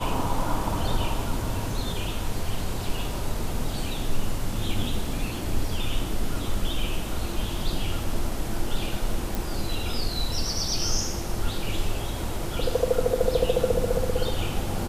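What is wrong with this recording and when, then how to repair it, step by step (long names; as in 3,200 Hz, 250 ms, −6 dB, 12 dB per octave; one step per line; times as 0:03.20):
0:09.35: click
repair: click removal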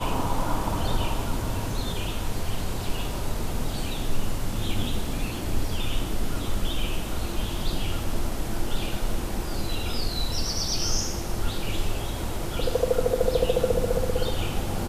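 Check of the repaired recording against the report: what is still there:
none of them is left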